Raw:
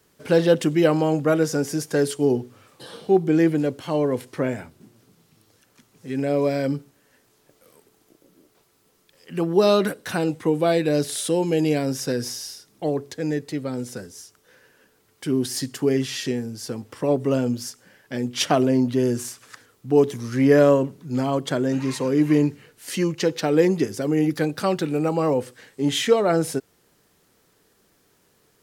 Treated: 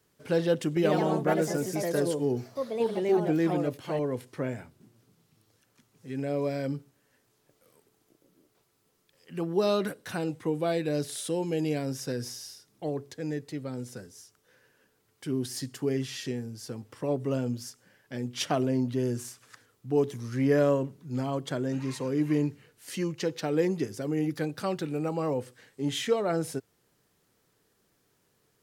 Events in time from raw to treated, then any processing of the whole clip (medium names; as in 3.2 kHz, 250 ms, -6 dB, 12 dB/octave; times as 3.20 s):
0.67–4.51 s: ever faster or slower copies 94 ms, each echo +3 st, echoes 2
whole clip: peaking EQ 120 Hz +4.5 dB 0.59 oct; trim -8.5 dB